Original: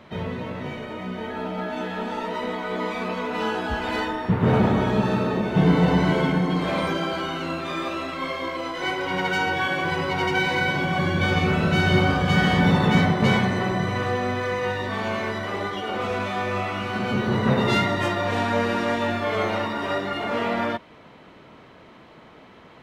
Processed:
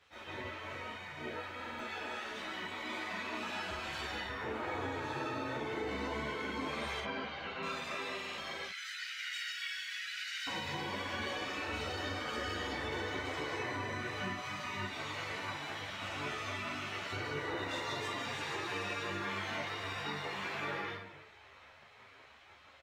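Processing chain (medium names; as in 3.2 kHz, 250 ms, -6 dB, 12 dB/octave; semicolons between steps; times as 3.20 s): peak limiter -14.5 dBFS, peak gain reduction 7.5 dB; reverberation RT60 0.65 s, pre-delay 139 ms, DRR -2.5 dB; spectral gate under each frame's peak -10 dB weak; 7.00–7.63 s: distance through air 220 m; 8.67–10.47 s: steep high-pass 1.4 kHz 72 dB/octave; saturation -14 dBFS, distortion -29 dB; doubling 41 ms -4 dB; compression, threshold -26 dBFS, peak gain reduction 6 dB; buffer glitch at 1.56/8.15 s, samples 2048, times 4; three-phase chorus; trim -5.5 dB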